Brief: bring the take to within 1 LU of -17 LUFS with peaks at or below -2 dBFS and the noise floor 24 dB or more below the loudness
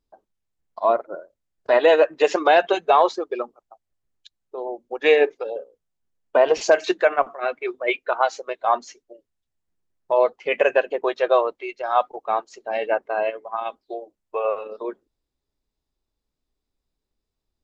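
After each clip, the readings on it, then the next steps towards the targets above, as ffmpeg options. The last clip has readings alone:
loudness -21.5 LUFS; peak -3.0 dBFS; loudness target -17.0 LUFS
-> -af "volume=4.5dB,alimiter=limit=-2dB:level=0:latency=1"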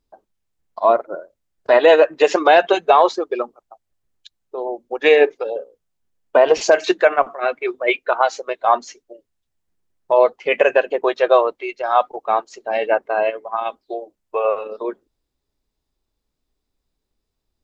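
loudness -17.5 LUFS; peak -2.0 dBFS; noise floor -77 dBFS

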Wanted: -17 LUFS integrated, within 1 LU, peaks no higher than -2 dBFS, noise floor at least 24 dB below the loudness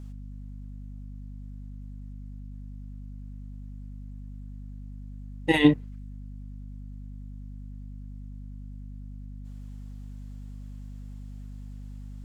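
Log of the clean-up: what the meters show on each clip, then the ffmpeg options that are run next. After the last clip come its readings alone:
hum 50 Hz; harmonics up to 250 Hz; hum level -38 dBFS; loudness -35.0 LUFS; peak -6.0 dBFS; loudness target -17.0 LUFS
-> -af "bandreject=f=50:t=h:w=4,bandreject=f=100:t=h:w=4,bandreject=f=150:t=h:w=4,bandreject=f=200:t=h:w=4,bandreject=f=250:t=h:w=4"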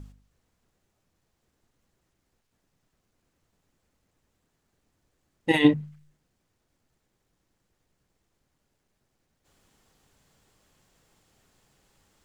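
hum none; loudness -23.5 LUFS; peak -6.5 dBFS; loudness target -17.0 LUFS
-> -af "volume=6.5dB,alimiter=limit=-2dB:level=0:latency=1"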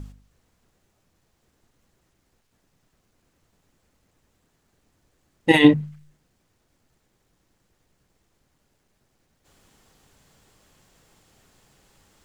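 loudness -17.5 LUFS; peak -2.0 dBFS; noise floor -70 dBFS

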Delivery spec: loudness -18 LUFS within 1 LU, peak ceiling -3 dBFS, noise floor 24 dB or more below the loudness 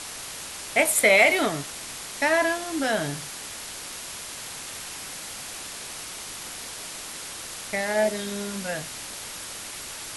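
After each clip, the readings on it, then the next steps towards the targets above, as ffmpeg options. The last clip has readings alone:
noise floor -38 dBFS; noise floor target -51 dBFS; loudness -26.5 LUFS; peak -6.0 dBFS; loudness target -18.0 LUFS
-> -af "afftdn=nr=13:nf=-38"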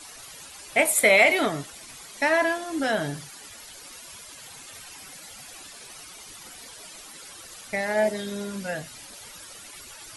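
noise floor -45 dBFS; noise floor target -47 dBFS
-> -af "afftdn=nr=6:nf=-45"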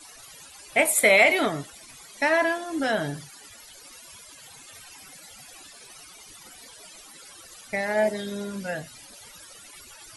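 noise floor -48 dBFS; loudness -23.0 LUFS; peak -6.0 dBFS; loudness target -18.0 LUFS
-> -af "volume=5dB,alimiter=limit=-3dB:level=0:latency=1"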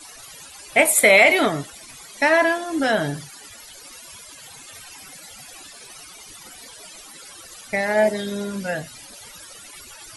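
loudness -18.5 LUFS; peak -3.0 dBFS; noise floor -43 dBFS

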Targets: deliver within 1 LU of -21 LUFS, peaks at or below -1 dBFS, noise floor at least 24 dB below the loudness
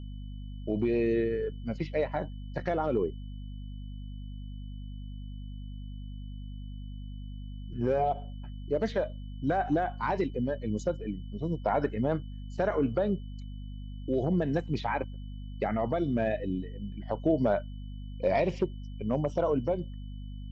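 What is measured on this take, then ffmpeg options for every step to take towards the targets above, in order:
hum 50 Hz; harmonics up to 250 Hz; hum level -37 dBFS; steady tone 3000 Hz; tone level -61 dBFS; loudness -31.0 LUFS; peak -15.0 dBFS; loudness target -21.0 LUFS
-> -af "bandreject=f=50:t=h:w=6,bandreject=f=100:t=h:w=6,bandreject=f=150:t=h:w=6,bandreject=f=200:t=h:w=6,bandreject=f=250:t=h:w=6"
-af "bandreject=f=3k:w=30"
-af "volume=10dB"

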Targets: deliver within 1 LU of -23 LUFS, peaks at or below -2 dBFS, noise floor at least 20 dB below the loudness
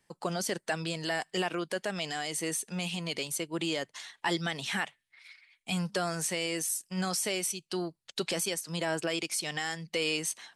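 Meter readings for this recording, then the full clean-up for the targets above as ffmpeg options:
loudness -32.5 LUFS; peak -18.5 dBFS; loudness target -23.0 LUFS
-> -af "volume=9.5dB"

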